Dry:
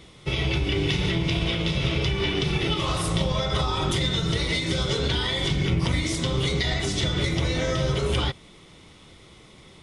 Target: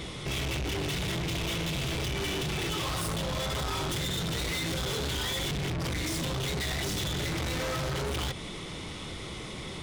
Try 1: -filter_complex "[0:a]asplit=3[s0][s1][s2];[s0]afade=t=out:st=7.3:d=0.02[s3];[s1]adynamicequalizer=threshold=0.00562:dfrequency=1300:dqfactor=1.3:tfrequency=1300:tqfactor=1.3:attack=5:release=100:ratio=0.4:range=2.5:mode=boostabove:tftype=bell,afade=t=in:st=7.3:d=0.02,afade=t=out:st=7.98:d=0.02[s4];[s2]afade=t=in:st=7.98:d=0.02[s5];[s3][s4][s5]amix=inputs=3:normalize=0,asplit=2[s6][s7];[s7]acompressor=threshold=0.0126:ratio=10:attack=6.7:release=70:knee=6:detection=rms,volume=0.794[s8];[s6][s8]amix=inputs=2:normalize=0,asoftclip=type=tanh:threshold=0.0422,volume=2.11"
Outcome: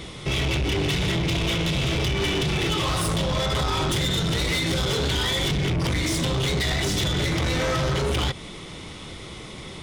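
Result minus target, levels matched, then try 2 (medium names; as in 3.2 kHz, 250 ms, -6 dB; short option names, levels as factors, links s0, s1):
saturation: distortion -4 dB
-filter_complex "[0:a]asplit=3[s0][s1][s2];[s0]afade=t=out:st=7.3:d=0.02[s3];[s1]adynamicequalizer=threshold=0.00562:dfrequency=1300:dqfactor=1.3:tfrequency=1300:tqfactor=1.3:attack=5:release=100:ratio=0.4:range=2.5:mode=boostabove:tftype=bell,afade=t=in:st=7.3:d=0.02,afade=t=out:st=7.98:d=0.02[s4];[s2]afade=t=in:st=7.98:d=0.02[s5];[s3][s4][s5]amix=inputs=3:normalize=0,asplit=2[s6][s7];[s7]acompressor=threshold=0.0126:ratio=10:attack=6.7:release=70:knee=6:detection=rms,volume=0.794[s8];[s6][s8]amix=inputs=2:normalize=0,asoftclip=type=tanh:threshold=0.0141,volume=2.11"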